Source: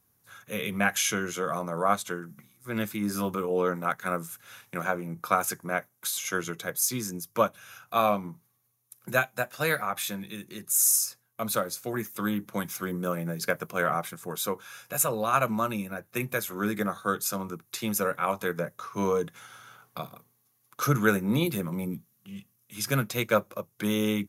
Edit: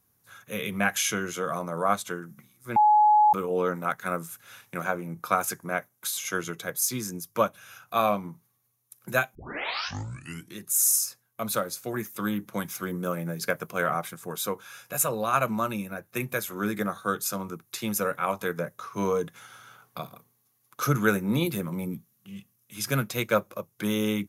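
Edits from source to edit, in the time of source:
0:02.76–0:03.33: beep over 845 Hz −15 dBFS
0:09.35: tape start 1.24 s

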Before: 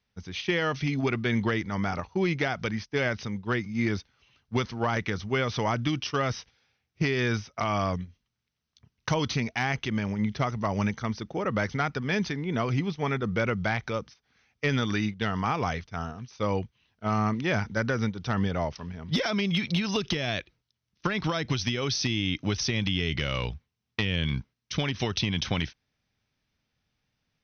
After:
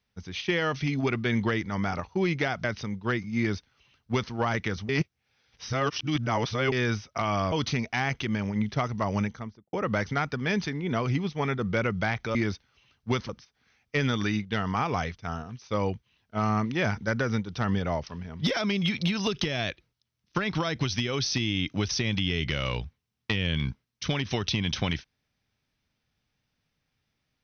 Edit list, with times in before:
0:02.64–0:03.06: remove
0:03.80–0:04.74: duplicate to 0:13.98
0:05.31–0:07.14: reverse
0:07.94–0:09.15: remove
0:10.74–0:11.36: fade out and dull

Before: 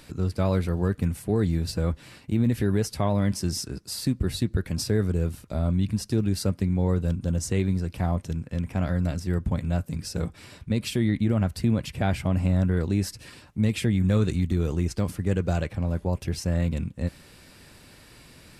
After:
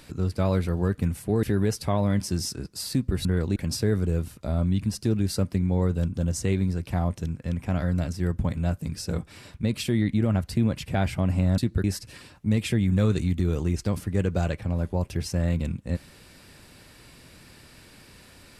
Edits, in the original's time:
0:01.43–0:02.55: remove
0:04.37–0:04.63: swap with 0:12.65–0:12.96

